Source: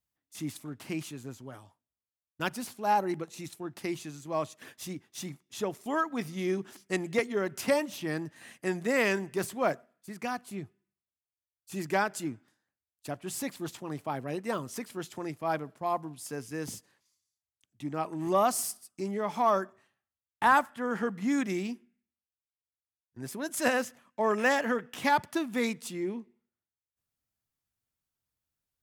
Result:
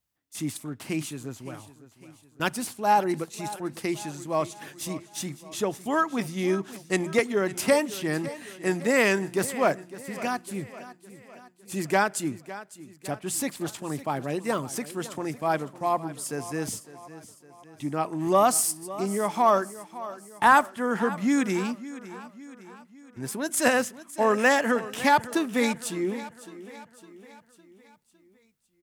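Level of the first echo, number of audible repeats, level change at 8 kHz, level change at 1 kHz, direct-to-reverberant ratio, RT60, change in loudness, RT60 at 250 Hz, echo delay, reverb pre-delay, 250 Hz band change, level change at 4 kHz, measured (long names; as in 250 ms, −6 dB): −16.0 dB, 4, +8.5 dB, +5.0 dB, no reverb audible, no reverb audible, +5.0 dB, no reverb audible, 557 ms, no reverb audible, +5.0 dB, +5.5 dB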